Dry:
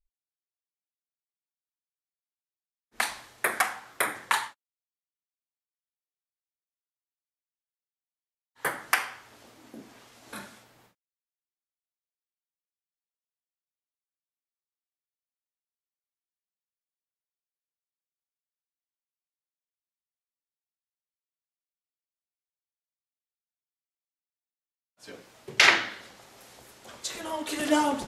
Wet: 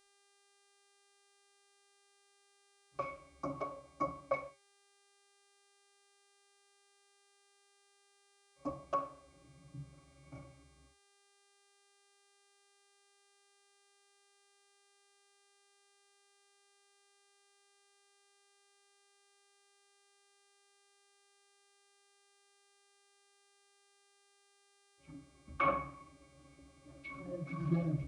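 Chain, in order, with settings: pitch shift -10 st; pitch-class resonator C#, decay 0.15 s; mains buzz 400 Hz, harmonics 26, -74 dBFS -2 dB/octave; trim +3 dB

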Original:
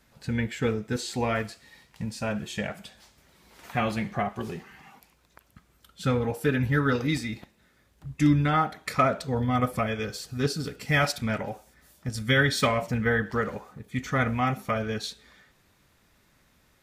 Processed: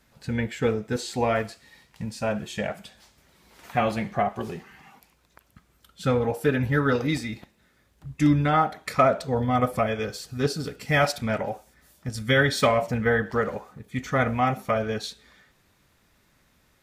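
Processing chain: dynamic bell 640 Hz, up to +6 dB, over -40 dBFS, Q 1.1

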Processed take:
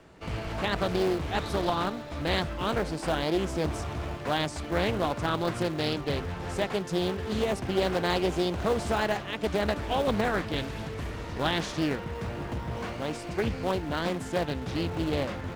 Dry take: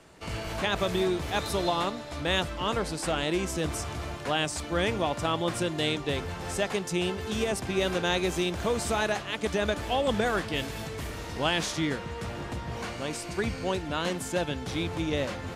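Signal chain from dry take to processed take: treble shelf 5.1 kHz -11.5 dB; in parallel at -11 dB: decimation with a swept rate 35×, swing 100% 0.21 Hz; on the sum: loudspeaker Doppler distortion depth 0.42 ms

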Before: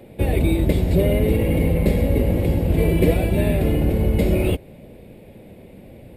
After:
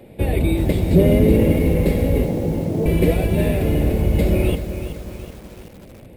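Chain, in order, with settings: 0.91–1.52 s: peaking EQ 230 Hz +7 dB 2 oct; 2.24–2.86 s: Chebyshev band-pass 120–920 Hz, order 3; bit-crushed delay 376 ms, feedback 55%, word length 6-bit, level -10 dB

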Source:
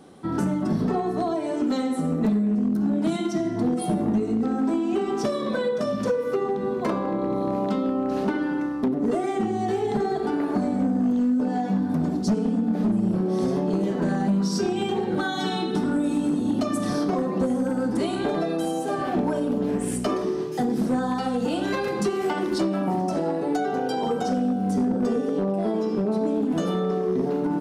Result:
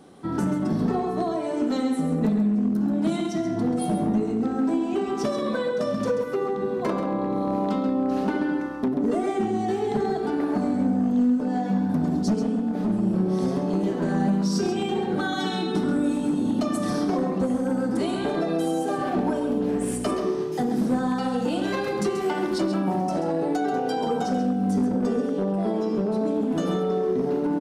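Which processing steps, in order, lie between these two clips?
echo from a far wall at 23 m, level -7 dB; trim -1 dB

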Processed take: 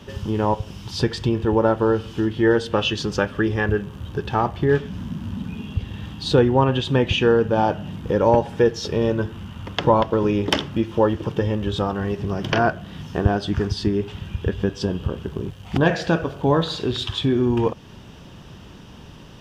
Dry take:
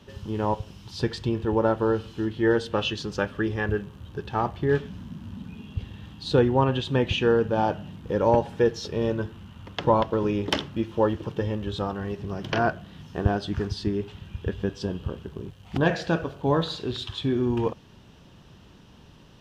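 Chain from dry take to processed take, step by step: band-stop 4.1 kHz, Q 15; in parallel at +2 dB: compression, threshold -31 dBFS, peak gain reduction 15.5 dB; on the sum: trim +2 dB

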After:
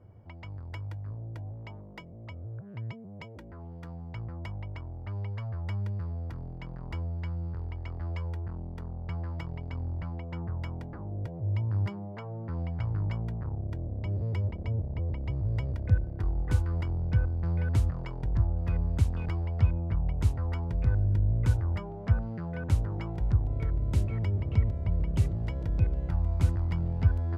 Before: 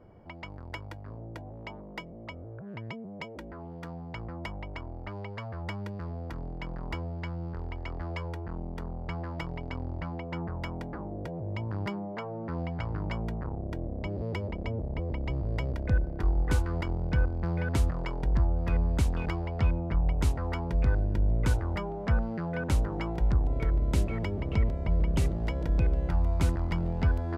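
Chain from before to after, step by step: peaking EQ 100 Hz +14 dB 0.87 oct; trim -6.5 dB

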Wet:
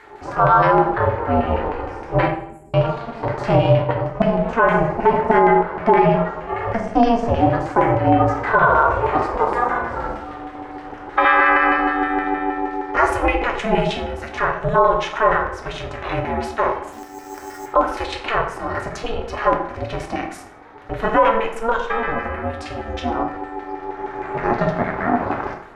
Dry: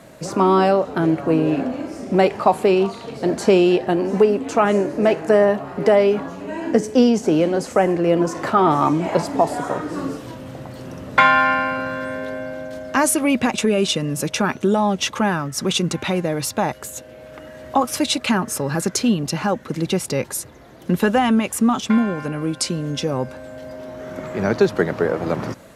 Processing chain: LFO band-pass saw down 6.4 Hz 600–2000 Hz; harmonic-percussive split harmonic +9 dB; 2.26–2.74 s: Chebyshev band-stop 150–7300 Hz, order 5; 3.59–4.30 s: expander -21 dBFS; 16.92–17.66 s: sample-rate reducer 7 kHz, jitter 0%; reverberation RT60 0.70 s, pre-delay 6 ms, DRR 2.5 dB; ring modulator 230 Hz; loudness maximiser +9.5 dB; trim -3 dB

